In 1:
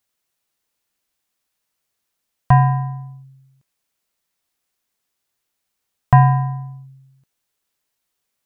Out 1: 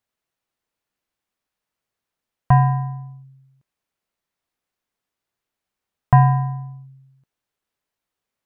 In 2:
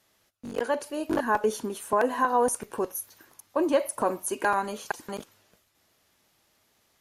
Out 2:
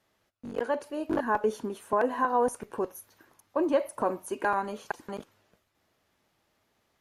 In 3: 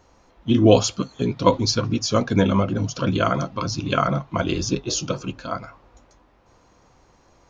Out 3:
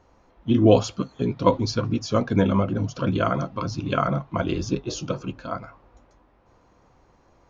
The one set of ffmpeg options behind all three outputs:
ffmpeg -i in.wav -af "highshelf=frequency=3500:gain=-11,volume=-1.5dB" out.wav

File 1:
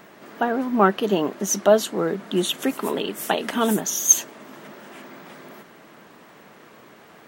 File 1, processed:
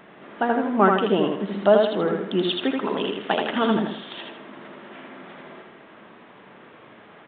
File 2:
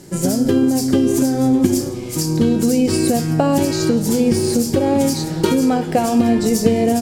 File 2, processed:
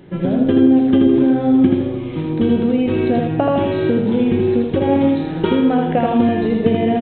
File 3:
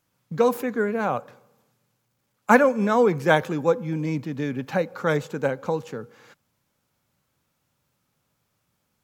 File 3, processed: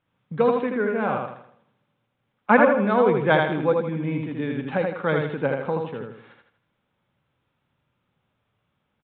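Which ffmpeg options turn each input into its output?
ffmpeg -i in.wav -filter_complex "[0:a]asplit=2[link_01][link_02];[link_02]aecho=0:1:80|160|240|320|400:0.668|0.267|0.107|0.0428|0.0171[link_03];[link_01][link_03]amix=inputs=2:normalize=0,aresample=8000,aresample=44100,volume=-1dB" out.wav

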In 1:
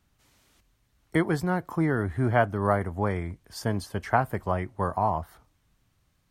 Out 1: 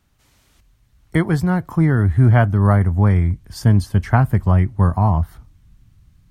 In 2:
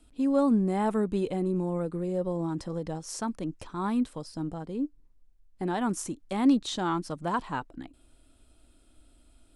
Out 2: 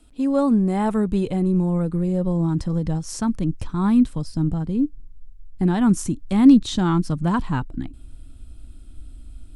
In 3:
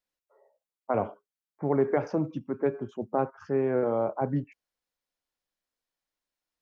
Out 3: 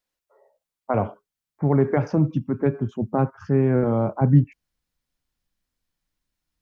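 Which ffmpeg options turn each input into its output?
ffmpeg -i in.wav -af "asubboost=boost=6.5:cutoff=200,volume=5dB" out.wav

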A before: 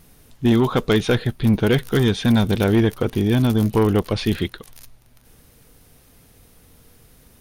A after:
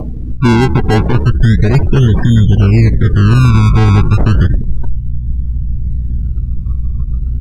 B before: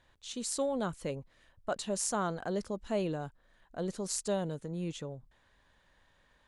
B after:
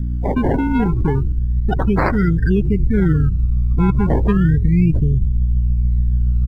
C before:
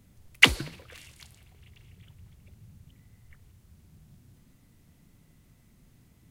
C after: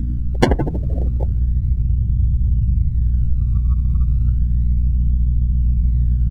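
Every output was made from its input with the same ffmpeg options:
ffmpeg -i in.wav -filter_complex "[0:a]aeval=exprs='val(0)+0.00316*(sin(2*PI*60*n/s)+sin(2*PI*2*60*n/s)/2+sin(2*PI*3*60*n/s)/3+sin(2*PI*4*60*n/s)/4+sin(2*PI*5*60*n/s)/5)':channel_layout=same,acompressor=threshold=-28dB:ratio=1.5,asplit=2[link_01][link_02];[link_02]asplit=5[link_03][link_04][link_05][link_06][link_07];[link_03]adelay=80,afreqshift=-53,volume=-14dB[link_08];[link_04]adelay=160,afreqshift=-106,volume=-19.4dB[link_09];[link_05]adelay=240,afreqshift=-159,volume=-24.7dB[link_10];[link_06]adelay=320,afreqshift=-212,volume=-30.1dB[link_11];[link_07]adelay=400,afreqshift=-265,volume=-35.4dB[link_12];[link_08][link_09][link_10][link_11][link_12]amix=inputs=5:normalize=0[link_13];[link_01][link_13]amix=inputs=2:normalize=0,asubboost=boost=8:cutoff=120,asuperstop=centerf=790:order=20:qfactor=0.85,acrusher=samples=25:mix=1:aa=0.000001:lfo=1:lforange=25:lforate=0.33,acompressor=mode=upward:threshold=-24dB:ratio=2.5,asoftclip=type=tanh:threshold=-8dB,afftdn=noise_reduction=29:noise_floor=-34,alimiter=level_in=17dB:limit=-1dB:release=50:level=0:latency=1,volume=-1dB" out.wav

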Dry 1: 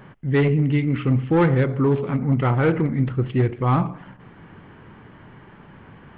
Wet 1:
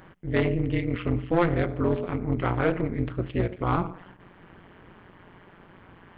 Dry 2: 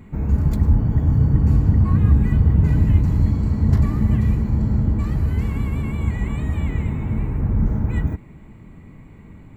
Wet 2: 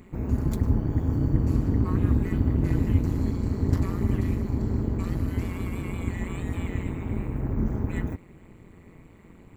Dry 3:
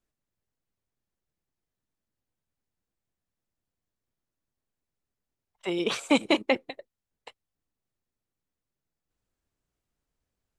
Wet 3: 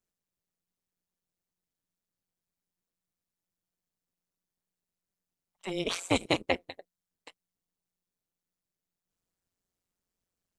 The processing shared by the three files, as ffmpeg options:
ffmpeg -i in.wav -af "bass=frequency=250:gain=-4,treble=frequency=4000:gain=5,tremolo=f=180:d=0.947" out.wav

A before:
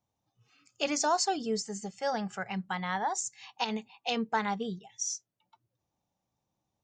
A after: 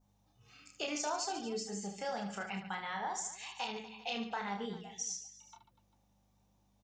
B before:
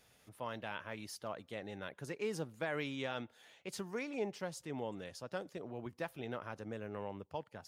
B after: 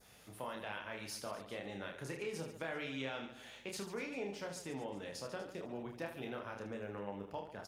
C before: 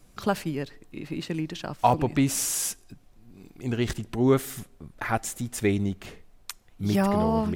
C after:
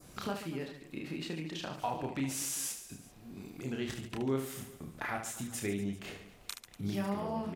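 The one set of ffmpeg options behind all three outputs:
ffmpeg -i in.wav -filter_complex "[0:a]highpass=frequency=120:poles=1,adynamicequalizer=threshold=0.00355:dfrequency=2700:dqfactor=1.5:tfrequency=2700:tqfactor=1.5:attack=5:release=100:ratio=0.375:range=1.5:mode=boostabove:tftype=bell,acompressor=threshold=-49dB:ratio=2.5,aeval=exprs='val(0)+0.000178*(sin(2*PI*50*n/s)+sin(2*PI*2*50*n/s)/2+sin(2*PI*3*50*n/s)/3+sin(2*PI*4*50*n/s)/4+sin(2*PI*5*50*n/s)/5)':channel_layout=same,asplit=2[link_01][link_02];[link_02]aecho=0:1:30|75|142.5|243.8|395.6:0.631|0.398|0.251|0.158|0.1[link_03];[link_01][link_03]amix=inputs=2:normalize=0,volume=4.5dB" out.wav

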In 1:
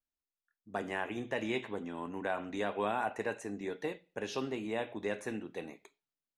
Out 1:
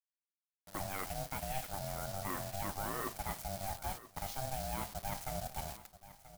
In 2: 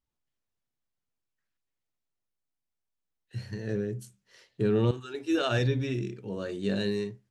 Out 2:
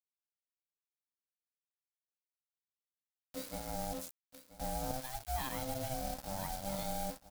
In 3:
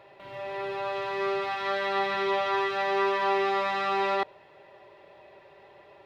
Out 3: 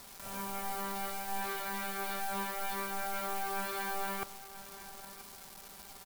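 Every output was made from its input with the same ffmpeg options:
ffmpeg -i in.wav -filter_complex "[0:a]highpass=78,lowshelf=frequency=440:width_type=q:width=1.5:gain=6.5,areverse,acompressor=threshold=-32dB:ratio=6,areverse,asplit=2[link_01][link_02];[link_02]highpass=frequency=720:poles=1,volume=13dB,asoftclip=type=tanh:threshold=-22.5dB[link_03];[link_01][link_03]amix=inputs=2:normalize=0,lowpass=frequency=1400:poles=1,volume=-6dB,acrusher=bits=7:mix=0:aa=0.000001,aexciter=amount=3.1:drive=5.4:freq=4000,aeval=exprs='val(0)*sin(2*PI*390*n/s)':channel_layout=same,aeval=exprs='sgn(val(0))*max(abs(val(0))-0.00422,0)':channel_layout=same,asplit=2[link_04][link_05];[link_05]aecho=0:1:982|1964|2946:0.158|0.0475|0.0143[link_06];[link_04][link_06]amix=inputs=2:normalize=0" out.wav

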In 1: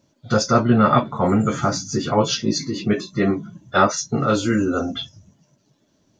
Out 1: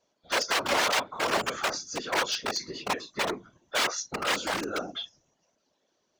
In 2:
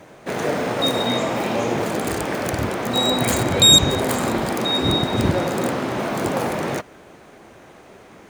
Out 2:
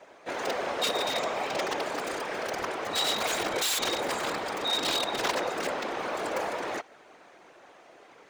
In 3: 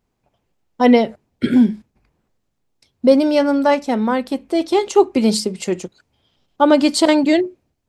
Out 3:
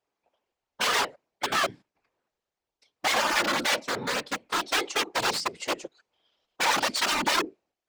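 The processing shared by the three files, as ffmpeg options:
ffmpeg -i in.wav -filter_complex "[0:a]aeval=exprs='(mod(3.98*val(0)+1,2)-1)/3.98':channel_layout=same,acrossover=split=360 7400:gain=0.0794 1 0.251[link_01][link_02][link_03];[link_01][link_02][link_03]amix=inputs=3:normalize=0,afftfilt=real='hypot(re,im)*cos(2*PI*random(0))':imag='hypot(re,im)*sin(2*PI*random(1))':win_size=512:overlap=0.75" out.wav

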